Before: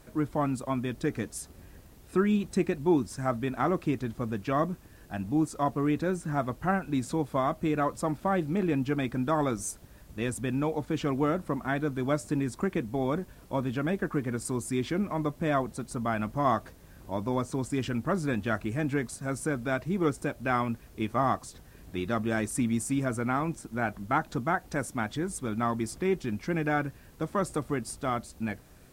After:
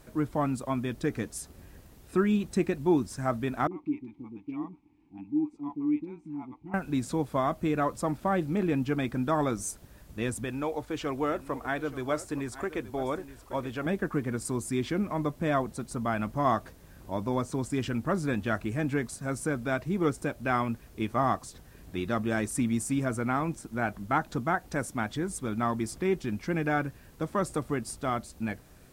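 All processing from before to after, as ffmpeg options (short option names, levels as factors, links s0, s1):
-filter_complex "[0:a]asettb=1/sr,asplit=3[s0][s1][s2];[s0]atrim=end=3.674[s3];[s1]atrim=start=3.67:end=6.74,asetpts=PTS-STARTPTS,afade=t=in:d=0.004:c=qsin,afade=t=out:st=3.066:d=0.004:c=qsin,asplit=3[s4][s5][s6];[s4]bandpass=f=300:t=q:w=8,volume=1[s7];[s5]bandpass=f=870:t=q:w=8,volume=0.501[s8];[s6]bandpass=f=2240:t=q:w=8,volume=0.355[s9];[s7][s8][s9]amix=inputs=3:normalize=0,lowshelf=f=130:g=11.5,acrossover=split=520[s10][s11];[s11]adelay=40[s12];[s10][s12]amix=inputs=2:normalize=0,atrim=end_sample=135387[s13];[s2]atrim=start=6.736[s14];[s3][s13]acrossfade=d=0.004:c1=hsin:c2=qsin[s15];[s15][s14]acrossfade=d=0.004:c1=qsin:c2=hsin,asettb=1/sr,asplit=3[s16][s17][s18];[s16]atrim=end=10.444[s19];[s17]atrim=start=10.44:end=13.86,asetpts=PTS-STARTPTS,afade=t=in:d=0.004:c=qsin,afade=t=out:st=3.416:d=0.004:c=qsin,equalizer=f=180:w=1.7:g=-14.5,aecho=1:1:874:0.178,atrim=end_sample=150822[s20];[s18]atrim=start=13.856[s21];[s19][s20]acrossfade=d=0.004:c1=hsin:c2=qsin[s22];[s22][s21]acrossfade=d=0.004:c1=qsin:c2=hsin"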